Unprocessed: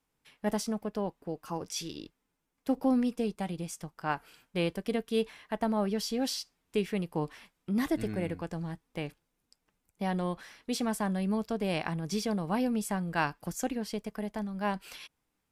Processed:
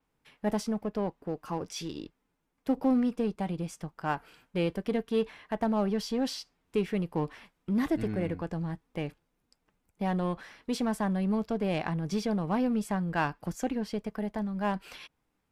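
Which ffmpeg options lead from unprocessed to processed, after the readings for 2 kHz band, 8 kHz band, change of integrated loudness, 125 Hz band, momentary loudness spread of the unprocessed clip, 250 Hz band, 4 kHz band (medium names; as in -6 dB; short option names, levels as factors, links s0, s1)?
-0.5 dB, -5.0 dB, +1.5 dB, +2.5 dB, 10 LU, +2.0 dB, -2.5 dB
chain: -filter_complex "[0:a]highshelf=f=3300:g=-9,asplit=2[s0][s1];[s1]volume=56.2,asoftclip=hard,volume=0.0178,volume=0.562[s2];[s0][s2]amix=inputs=2:normalize=0,adynamicequalizer=threshold=0.00158:dfrequency=6700:dqfactor=0.7:tfrequency=6700:tqfactor=0.7:attack=5:release=100:ratio=0.375:range=2:mode=cutabove:tftype=highshelf"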